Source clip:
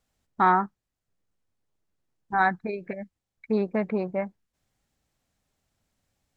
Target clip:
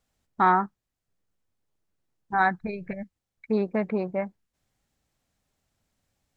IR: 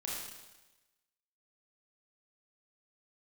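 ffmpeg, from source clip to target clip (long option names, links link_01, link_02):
-filter_complex "[0:a]asplit=3[link_01][link_02][link_03];[link_01]afade=type=out:start_time=2.6:duration=0.02[link_04];[link_02]asubboost=boost=9.5:cutoff=120,afade=type=in:start_time=2.6:duration=0.02,afade=type=out:start_time=3.02:duration=0.02[link_05];[link_03]afade=type=in:start_time=3.02:duration=0.02[link_06];[link_04][link_05][link_06]amix=inputs=3:normalize=0"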